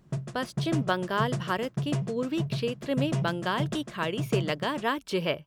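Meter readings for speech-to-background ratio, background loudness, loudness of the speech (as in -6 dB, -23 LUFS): 3.0 dB, -34.0 LUFS, -31.0 LUFS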